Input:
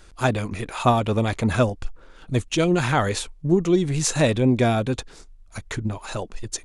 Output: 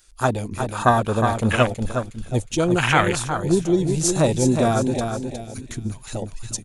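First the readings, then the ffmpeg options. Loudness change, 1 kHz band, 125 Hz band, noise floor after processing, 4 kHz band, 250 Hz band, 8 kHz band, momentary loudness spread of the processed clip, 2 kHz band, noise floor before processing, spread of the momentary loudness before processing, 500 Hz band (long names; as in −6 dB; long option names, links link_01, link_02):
+1.5 dB, +3.5 dB, +0.5 dB, −43 dBFS, +0.5 dB, +1.0 dB, +3.0 dB, 13 LU, +3.5 dB, −49 dBFS, 13 LU, +1.5 dB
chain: -af "aecho=1:1:362|724|1086|1448|1810:0.501|0.21|0.0884|0.0371|0.0156,afwtdn=0.0562,crystalizer=i=9:c=0,volume=-1dB"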